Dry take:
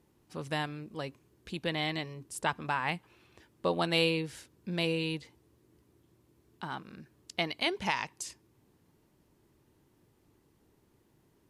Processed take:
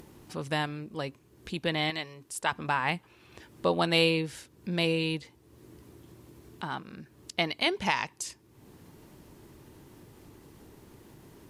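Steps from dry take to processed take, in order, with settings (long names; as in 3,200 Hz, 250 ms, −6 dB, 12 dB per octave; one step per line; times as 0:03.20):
0:01.90–0:02.52: low-shelf EQ 420 Hz −10.5 dB
upward compression, threshold −44 dBFS
level +3.5 dB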